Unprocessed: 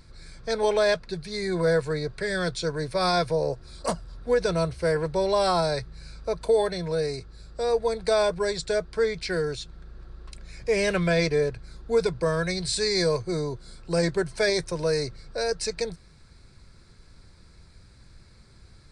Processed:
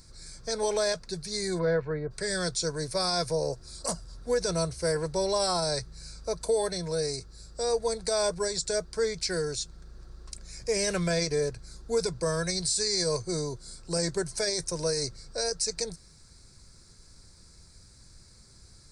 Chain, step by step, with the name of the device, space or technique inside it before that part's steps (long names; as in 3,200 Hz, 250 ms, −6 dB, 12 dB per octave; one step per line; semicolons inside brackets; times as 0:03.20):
0:01.58–0:02.10: low-pass filter 3,800 Hz → 1,700 Hz 24 dB per octave
over-bright horn tweeter (high shelf with overshoot 4,300 Hz +11 dB, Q 1.5; brickwall limiter −14.5 dBFS, peak gain reduction 9 dB)
level −3.5 dB